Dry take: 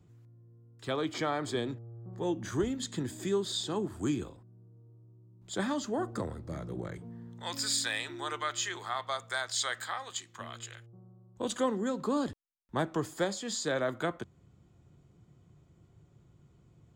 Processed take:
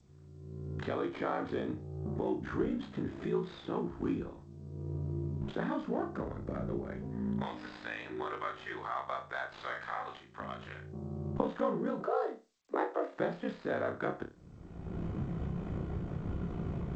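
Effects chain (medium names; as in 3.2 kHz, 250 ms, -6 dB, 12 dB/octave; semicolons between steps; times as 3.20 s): dead-time distortion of 0.07 ms; recorder AGC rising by 33 dB/s; ring modulator 28 Hz; 12.00–13.17 s: frequency shift +190 Hz; low-pass 1.9 kHz 12 dB/octave; peaking EQ 120 Hz -10.5 dB 0.29 oct; 9.53–10.13 s: doubling 48 ms -5 dB; flutter echo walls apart 5 m, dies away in 0.27 s; G.722 64 kbps 16 kHz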